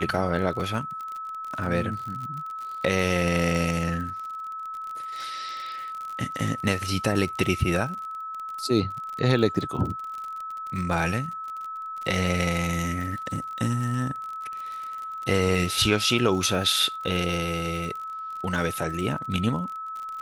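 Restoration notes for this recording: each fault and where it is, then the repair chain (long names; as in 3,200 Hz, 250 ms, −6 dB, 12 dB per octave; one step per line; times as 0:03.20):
surface crackle 45 per second −32 dBFS
whistle 1,300 Hz −32 dBFS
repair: click removal
notch filter 1,300 Hz, Q 30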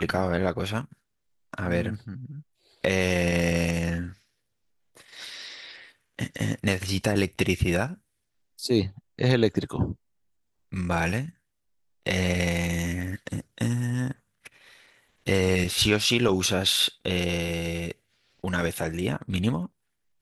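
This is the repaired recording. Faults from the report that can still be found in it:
none of them is left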